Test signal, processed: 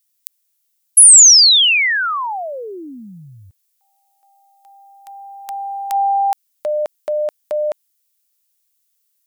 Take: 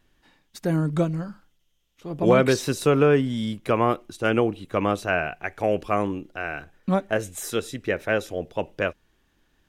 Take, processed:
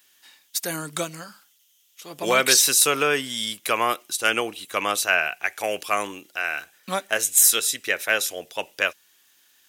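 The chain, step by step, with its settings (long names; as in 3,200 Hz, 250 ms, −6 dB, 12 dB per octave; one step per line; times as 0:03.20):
first difference
boost into a limiter +19 dB
level −1 dB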